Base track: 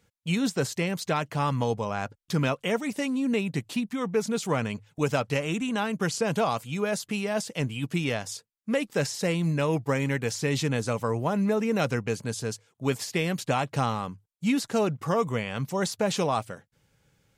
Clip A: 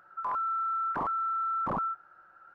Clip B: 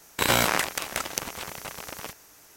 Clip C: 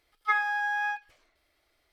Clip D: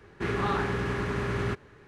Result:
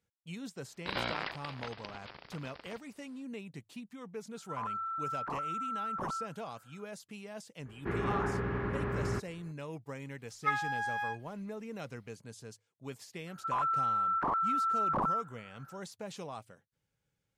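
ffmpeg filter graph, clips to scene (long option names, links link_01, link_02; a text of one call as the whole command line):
ffmpeg -i bed.wav -i cue0.wav -i cue1.wav -i cue2.wav -i cue3.wav -filter_complex "[1:a]asplit=2[link_01][link_02];[0:a]volume=-17dB[link_03];[2:a]aresample=11025,aresample=44100[link_04];[4:a]lowpass=1800[link_05];[3:a]aecho=1:1:6.3:0.31[link_06];[link_04]atrim=end=2.56,asetpts=PTS-STARTPTS,volume=-12.5dB,afade=type=in:duration=0.004:curve=hsin,afade=type=out:start_time=2.556:duration=0.004:curve=hsin,adelay=670[link_07];[link_01]atrim=end=2.54,asetpts=PTS-STARTPTS,volume=-6.5dB,afade=type=in:duration=0.004:curve=hsin,afade=type=out:start_time=2.536:duration=0.004:curve=hsin,adelay=4320[link_08];[link_05]atrim=end=1.87,asetpts=PTS-STARTPTS,volume=-4dB,afade=type=in:duration=0.004:curve=hsin,afade=type=out:start_time=1.866:duration=0.004:curve=hsin,adelay=7650[link_09];[link_06]atrim=end=1.92,asetpts=PTS-STARTPTS,volume=-5.5dB,afade=type=in:duration=0.004:curve=hsin,afade=type=out:start_time=1.916:duration=0.004:curve=hsin,adelay=448938S[link_10];[link_02]atrim=end=2.54,asetpts=PTS-STARTPTS,afade=type=in:duration=0.004:curve=hsin,afade=type=out:start_time=2.536:duration=0.004:curve=hsin,adelay=13270[link_11];[link_03][link_07][link_08][link_09][link_10][link_11]amix=inputs=6:normalize=0" out.wav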